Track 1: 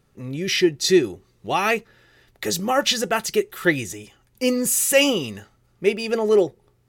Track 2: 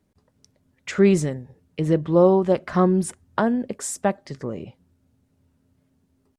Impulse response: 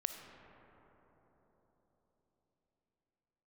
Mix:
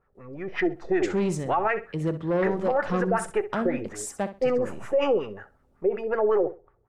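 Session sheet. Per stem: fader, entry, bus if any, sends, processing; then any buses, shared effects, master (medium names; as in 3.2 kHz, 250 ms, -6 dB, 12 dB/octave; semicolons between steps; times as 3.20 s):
-3.0 dB, 0.00 s, no send, echo send -18 dB, partial rectifier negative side -3 dB; LFO low-pass sine 5.4 Hz 440–1700 Hz; graphic EQ 125/250/4000 Hz -9/-9/-7 dB
-10.5 dB, 0.15 s, no send, echo send -13 dB, saturation -13 dBFS, distortion -14 dB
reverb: none
echo: feedback delay 64 ms, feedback 20%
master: level rider gain up to 5 dB; peak limiter -15 dBFS, peak gain reduction 11 dB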